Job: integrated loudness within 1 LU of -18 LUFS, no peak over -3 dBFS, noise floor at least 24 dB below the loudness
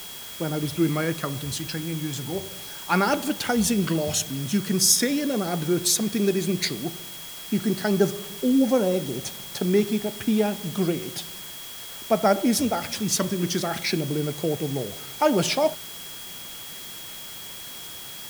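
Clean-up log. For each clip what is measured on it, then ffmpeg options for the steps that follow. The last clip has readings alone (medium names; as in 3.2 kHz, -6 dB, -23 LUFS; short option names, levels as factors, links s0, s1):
steady tone 3.3 kHz; tone level -42 dBFS; noise floor -39 dBFS; noise floor target -49 dBFS; loudness -24.5 LUFS; peak level -6.5 dBFS; loudness target -18.0 LUFS
-> -af "bandreject=f=3300:w=30"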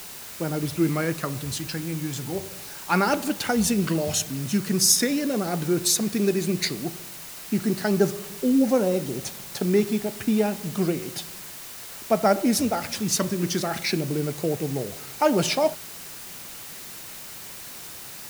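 steady tone not found; noise floor -40 dBFS; noise floor target -49 dBFS
-> -af "afftdn=nr=9:nf=-40"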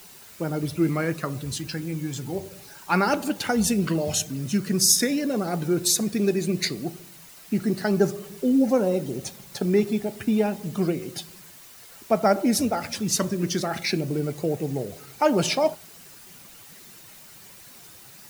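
noise floor -47 dBFS; noise floor target -49 dBFS
-> -af "afftdn=nr=6:nf=-47"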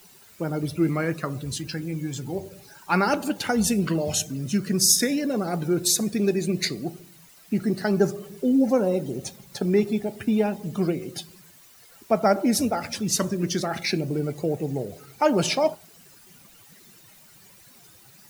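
noise floor -52 dBFS; loudness -24.5 LUFS; peak level -6.0 dBFS; loudness target -18.0 LUFS
-> -af "volume=2.11,alimiter=limit=0.708:level=0:latency=1"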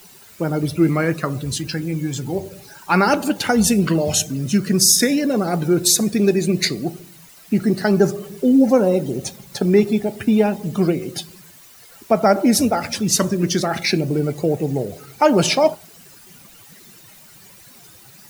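loudness -18.5 LUFS; peak level -3.0 dBFS; noise floor -46 dBFS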